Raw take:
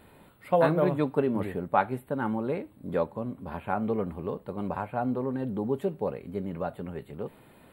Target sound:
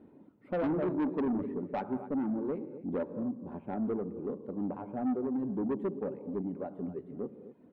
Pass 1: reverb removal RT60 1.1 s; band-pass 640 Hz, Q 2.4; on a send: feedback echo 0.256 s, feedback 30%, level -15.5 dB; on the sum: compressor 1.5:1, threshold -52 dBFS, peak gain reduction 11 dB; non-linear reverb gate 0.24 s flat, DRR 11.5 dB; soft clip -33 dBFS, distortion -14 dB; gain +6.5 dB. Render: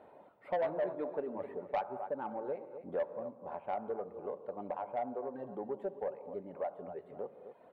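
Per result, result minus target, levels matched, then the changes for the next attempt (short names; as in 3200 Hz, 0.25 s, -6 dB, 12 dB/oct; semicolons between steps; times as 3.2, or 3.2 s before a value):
compressor: peak gain reduction +11 dB; 250 Hz band -10.5 dB
remove: compressor 1.5:1, threshold -52 dBFS, peak gain reduction 11 dB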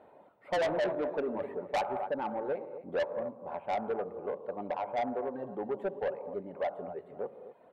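250 Hz band -10.0 dB
change: band-pass 280 Hz, Q 2.4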